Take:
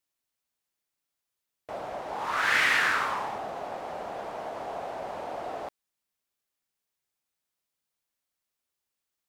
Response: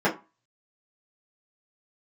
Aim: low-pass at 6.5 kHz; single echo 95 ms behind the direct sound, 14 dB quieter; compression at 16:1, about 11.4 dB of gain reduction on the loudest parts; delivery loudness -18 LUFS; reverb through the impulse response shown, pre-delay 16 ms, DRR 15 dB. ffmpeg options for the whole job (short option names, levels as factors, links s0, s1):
-filter_complex "[0:a]lowpass=6500,acompressor=threshold=0.0282:ratio=16,aecho=1:1:95:0.2,asplit=2[s0][s1];[1:a]atrim=start_sample=2205,adelay=16[s2];[s1][s2]afir=irnorm=-1:irlink=0,volume=0.0282[s3];[s0][s3]amix=inputs=2:normalize=0,volume=7.94"